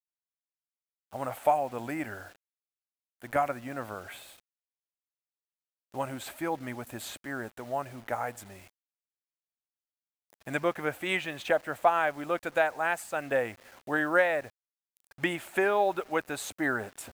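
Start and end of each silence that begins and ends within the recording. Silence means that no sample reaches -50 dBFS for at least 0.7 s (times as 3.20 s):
2.36–3.20 s
4.40–5.92 s
8.70–10.30 s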